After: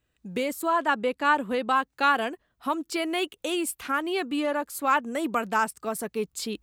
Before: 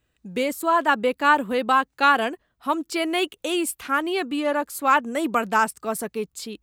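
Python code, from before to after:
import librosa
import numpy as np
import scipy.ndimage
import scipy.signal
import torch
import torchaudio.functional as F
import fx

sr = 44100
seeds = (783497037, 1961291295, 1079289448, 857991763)

y = fx.recorder_agc(x, sr, target_db=-14.5, rise_db_per_s=12.0, max_gain_db=30)
y = fx.bessel_lowpass(y, sr, hz=11000.0, order=8, at=(0.73, 1.76))
y = F.gain(torch.from_numpy(y), -4.5).numpy()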